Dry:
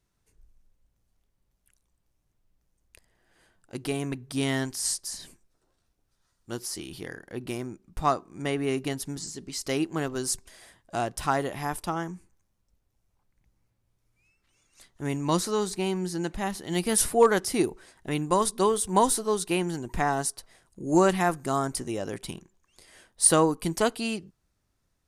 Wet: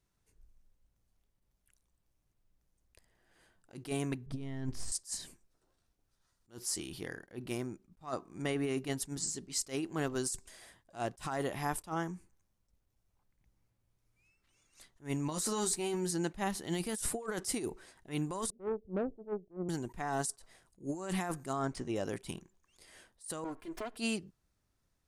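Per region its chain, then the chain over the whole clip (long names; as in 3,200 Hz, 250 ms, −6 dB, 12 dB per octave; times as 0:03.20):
0:04.26–0:04.92: gain on one half-wave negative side −3 dB + RIAA equalisation playback + notch filter 1,500 Hz, Q 17
0:15.30–0:16.11: high-shelf EQ 9,800 Hz +7 dB + double-tracking delay 13 ms −6 dB
0:18.50–0:19.69: Chebyshev low-pass filter 630 Hz, order 5 + tube saturation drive 24 dB, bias 0.5 + expander for the loud parts, over −42 dBFS
0:21.53–0:21.96: running median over 3 samples + high-frequency loss of the air 76 metres
0:23.44–0:23.97: lower of the sound and its delayed copy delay 2.9 ms + bass and treble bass −3 dB, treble −14 dB + downward compressor 4 to 1, threshold −34 dBFS
whole clip: dynamic equaliser 7,800 Hz, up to +8 dB, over −47 dBFS, Q 2.2; compressor whose output falls as the input rises −28 dBFS, ratio −1; level that may rise only so fast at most 270 dB per second; level −6.5 dB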